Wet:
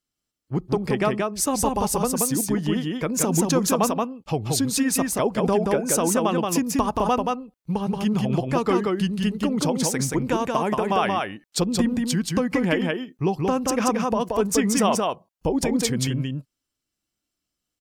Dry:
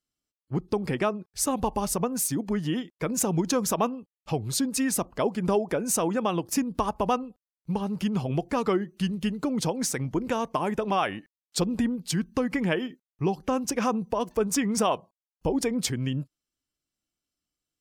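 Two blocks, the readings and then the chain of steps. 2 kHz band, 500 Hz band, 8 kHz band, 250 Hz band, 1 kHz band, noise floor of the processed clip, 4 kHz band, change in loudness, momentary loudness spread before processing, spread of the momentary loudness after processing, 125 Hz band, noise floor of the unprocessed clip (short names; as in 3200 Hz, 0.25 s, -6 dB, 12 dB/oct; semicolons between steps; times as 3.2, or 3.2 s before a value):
+4.5 dB, +4.5 dB, +5.0 dB, +5.0 dB, +5.0 dB, -83 dBFS, +5.0 dB, +4.5 dB, 6 LU, 7 LU, +4.5 dB, under -85 dBFS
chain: echo 0.178 s -3 dB; gain +3 dB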